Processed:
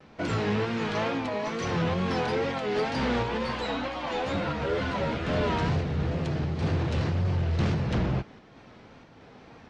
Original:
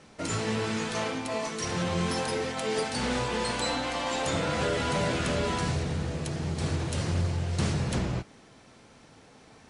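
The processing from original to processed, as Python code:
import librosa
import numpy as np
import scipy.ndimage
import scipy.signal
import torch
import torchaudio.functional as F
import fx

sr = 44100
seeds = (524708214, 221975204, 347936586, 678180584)

p1 = fx.wow_flutter(x, sr, seeds[0], rate_hz=2.1, depth_cents=93.0)
p2 = fx.volume_shaper(p1, sr, bpm=93, per_beat=1, depth_db=-12, release_ms=172.0, shape='slow start')
p3 = p1 + (p2 * 10.0 ** (-2.0 / 20.0))
p4 = 10.0 ** (-18.5 / 20.0) * np.tanh(p3 / 10.0 ** (-18.5 / 20.0))
p5 = fx.air_absorb(p4, sr, metres=200.0)
y = fx.ensemble(p5, sr, at=(3.37, 5.26), fade=0.02)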